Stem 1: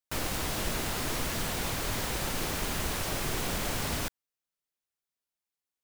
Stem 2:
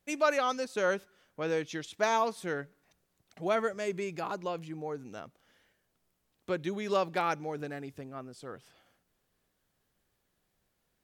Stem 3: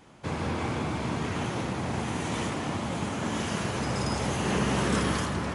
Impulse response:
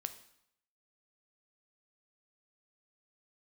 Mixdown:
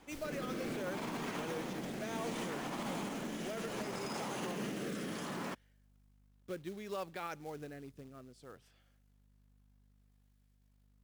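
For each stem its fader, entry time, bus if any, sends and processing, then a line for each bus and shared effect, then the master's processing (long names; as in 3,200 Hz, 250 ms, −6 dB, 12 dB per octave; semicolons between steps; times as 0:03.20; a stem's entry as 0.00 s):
−10.5 dB, 0.00 s, bus A, no send, automatic ducking −13 dB, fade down 0.60 s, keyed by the second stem
−7.0 dB, 0.00 s, no bus, no send, mains hum 50 Hz, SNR 25 dB
−2.0 dB, 0.00 s, bus A, no send, high-pass filter 170 Hz 24 dB per octave
bus A: 0.0 dB, brickwall limiter −28 dBFS, peak gain reduction 10 dB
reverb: not used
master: rotating-speaker cabinet horn 0.65 Hz; floating-point word with a short mantissa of 2 bits; brickwall limiter −31 dBFS, peak gain reduction 7 dB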